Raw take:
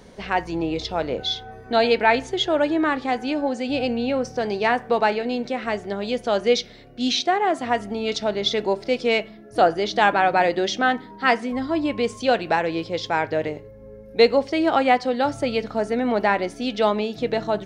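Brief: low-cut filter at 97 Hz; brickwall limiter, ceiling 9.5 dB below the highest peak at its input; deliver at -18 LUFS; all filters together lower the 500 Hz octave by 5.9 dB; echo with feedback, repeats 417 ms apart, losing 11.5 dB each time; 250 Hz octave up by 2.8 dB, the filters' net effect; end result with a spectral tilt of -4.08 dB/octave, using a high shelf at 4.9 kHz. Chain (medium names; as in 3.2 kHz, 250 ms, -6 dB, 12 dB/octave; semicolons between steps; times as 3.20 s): high-pass 97 Hz; peaking EQ 250 Hz +6 dB; peaking EQ 500 Hz -9 dB; treble shelf 4.9 kHz +5.5 dB; peak limiter -13 dBFS; feedback delay 417 ms, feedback 27%, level -11.5 dB; trim +6.5 dB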